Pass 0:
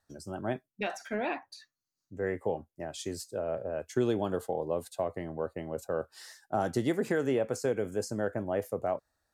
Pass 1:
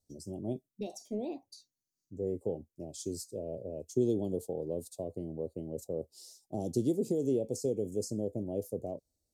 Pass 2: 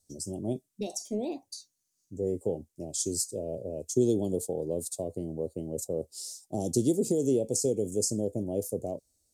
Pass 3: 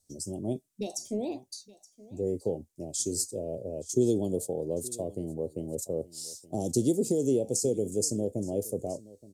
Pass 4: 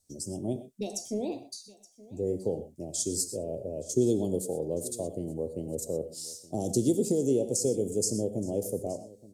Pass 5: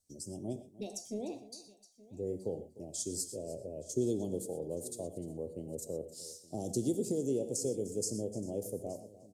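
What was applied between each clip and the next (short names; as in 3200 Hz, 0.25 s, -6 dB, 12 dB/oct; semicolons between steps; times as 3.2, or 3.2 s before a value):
Chebyshev band-stop 400–5700 Hz, order 2
bell 8300 Hz +11 dB 1.5 oct; gain +4 dB
echo 0.872 s -20.5 dB
non-linear reverb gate 0.14 s rising, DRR 11.5 dB
echo 0.301 s -18 dB; gain -7 dB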